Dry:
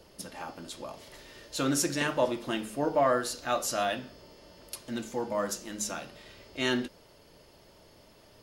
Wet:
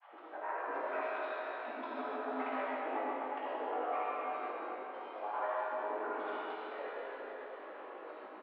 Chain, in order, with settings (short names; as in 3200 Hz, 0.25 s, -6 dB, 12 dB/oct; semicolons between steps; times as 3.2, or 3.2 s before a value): compressor 5:1, threshold -42 dBFS, peak gain reduction 19 dB; mistuned SSB +180 Hz 320–2000 Hz; step gate "xx.x.xxxxx.x..x." 138 bpm; grains, pitch spread up and down by 12 st; air absorption 310 m; doubler 19 ms -5 dB; digital reverb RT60 4.7 s, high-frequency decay 0.95×, pre-delay 10 ms, DRR -9 dB; gain +4 dB